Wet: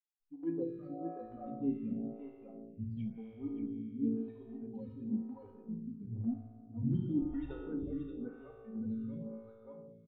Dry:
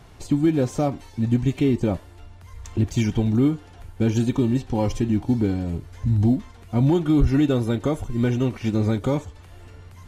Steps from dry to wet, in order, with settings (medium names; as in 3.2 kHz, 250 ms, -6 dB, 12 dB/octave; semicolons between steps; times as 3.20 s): expander on every frequency bin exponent 3; level-controlled noise filter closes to 950 Hz, open at -19.5 dBFS; peaking EQ 190 Hz +10 dB 2.7 oct; transient shaper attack -6 dB, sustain -10 dB; boxcar filter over 7 samples; feedback comb 56 Hz, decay 1.8 s, harmonics all, mix 90%; delay 579 ms -6.5 dB; reverberation RT60 0.85 s, pre-delay 4 ms, DRR 4 dB; lamp-driven phase shifter 0.97 Hz; trim -1 dB